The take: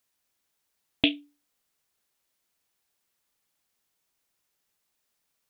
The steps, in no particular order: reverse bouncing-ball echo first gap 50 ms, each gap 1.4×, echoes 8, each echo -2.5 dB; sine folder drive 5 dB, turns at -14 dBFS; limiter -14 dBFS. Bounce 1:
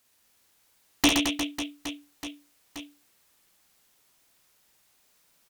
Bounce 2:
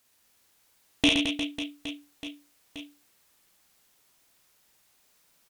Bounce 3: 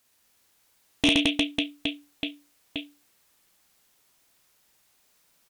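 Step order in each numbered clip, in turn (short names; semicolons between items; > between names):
sine folder > reverse bouncing-ball echo > limiter; limiter > sine folder > reverse bouncing-ball echo; reverse bouncing-ball echo > limiter > sine folder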